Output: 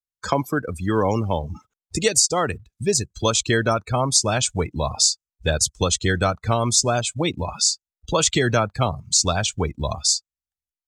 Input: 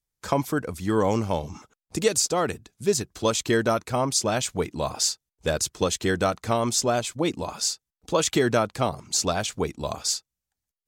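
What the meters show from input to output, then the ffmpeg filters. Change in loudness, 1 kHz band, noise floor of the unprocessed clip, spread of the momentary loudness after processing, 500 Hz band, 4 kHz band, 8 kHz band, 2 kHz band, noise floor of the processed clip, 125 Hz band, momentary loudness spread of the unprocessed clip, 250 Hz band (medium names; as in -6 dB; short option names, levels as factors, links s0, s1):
+4.0 dB, +3.0 dB, under -85 dBFS, 8 LU, +1.0 dB, +6.0 dB, +6.5 dB, +4.5 dB, under -85 dBFS, +6.5 dB, 7 LU, +1.5 dB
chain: -filter_complex "[0:a]acrossover=split=290|2700[s0][s1][s2];[s1]crystalizer=i=4.5:c=0[s3];[s2]acontrast=31[s4];[s0][s3][s4]amix=inputs=3:normalize=0,asubboost=boost=3:cutoff=140,asplit=2[s5][s6];[s6]acompressor=threshold=0.02:ratio=10,volume=1.41[s7];[s5][s7]amix=inputs=2:normalize=0,acrusher=bits=4:mode=log:mix=0:aa=0.000001,afftdn=nr=26:nf=-28"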